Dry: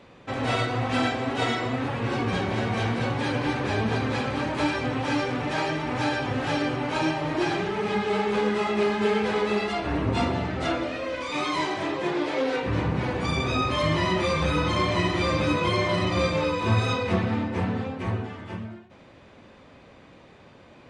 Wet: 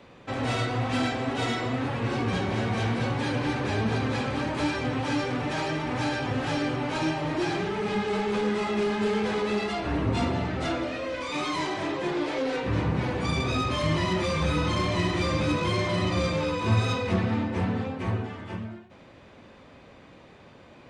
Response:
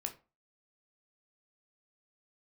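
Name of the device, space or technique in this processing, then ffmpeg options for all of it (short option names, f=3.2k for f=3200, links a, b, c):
one-band saturation: -filter_complex "[0:a]acrossover=split=310|4700[a][b][c];[b]asoftclip=type=tanh:threshold=-26dB[d];[a][d][c]amix=inputs=3:normalize=0"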